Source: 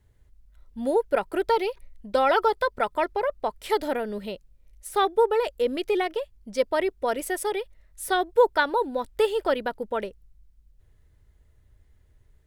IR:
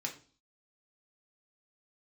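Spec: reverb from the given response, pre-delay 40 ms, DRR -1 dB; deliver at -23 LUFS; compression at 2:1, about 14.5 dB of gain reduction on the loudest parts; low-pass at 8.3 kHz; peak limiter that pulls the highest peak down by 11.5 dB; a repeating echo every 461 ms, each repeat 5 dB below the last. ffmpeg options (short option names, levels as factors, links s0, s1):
-filter_complex "[0:a]lowpass=8300,acompressor=threshold=0.00891:ratio=2,alimiter=level_in=2.37:limit=0.0631:level=0:latency=1,volume=0.422,aecho=1:1:461|922|1383|1844|2305|2766|3227:0.562|0.315|0.176|0.0988|0.0553|0.031|0.0173,asplit=2[s0][s1];[1:a]atrim=start_sample=2205,adelay=40[s2];[s1][s2]afir=irnorm=-1:irlink=0,volume=1[s3];[s0][s3]amix=inputs=2:normalize=0,volume=5.01"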